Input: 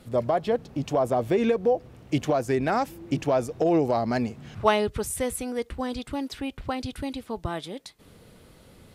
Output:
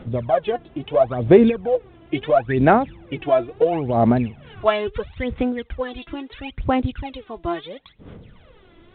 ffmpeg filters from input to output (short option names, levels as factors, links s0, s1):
-af "aphaser=in_gain=1:out_gain=1:delay=3:decay=0.77:speed=0.74:type=sinusoidal" -ar 8000 -c:a pcm_alaw